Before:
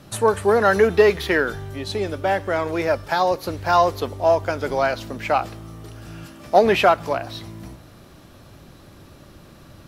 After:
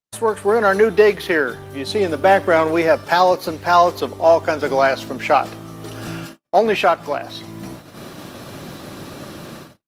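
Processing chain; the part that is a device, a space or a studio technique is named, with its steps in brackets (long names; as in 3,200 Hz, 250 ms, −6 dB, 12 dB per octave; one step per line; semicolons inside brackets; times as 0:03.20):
video call (high-pass filter 150 Hz 12 dB per octave; automatic gain control gain up to 15 dB; noise gate −34 dBFS, range −51 dB; level −1 dB; Opus 32 kbit/s 48,000 Hz)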